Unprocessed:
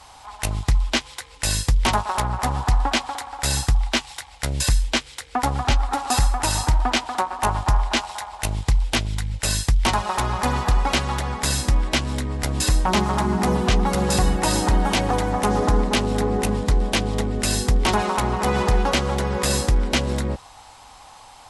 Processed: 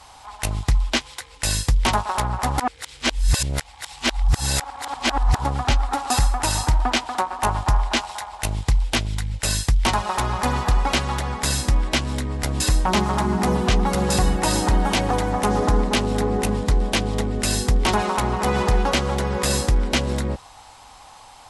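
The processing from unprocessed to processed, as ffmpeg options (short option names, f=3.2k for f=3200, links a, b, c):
-filter_complex "[0:a]asplit=3[a][b][c];[a]atrim=end=2.582[d];[b]atrim=start=2.578:end=5.452,asetpts=PTS-STARTPTS,areverse[e];[c]atrim=start=5.448[f];[d][e]acrossfade=d=0.004:c1=hsin:c2=hsin[g];[g][f]acrossfade=d=0.004:c1=hsin:c2=hsin"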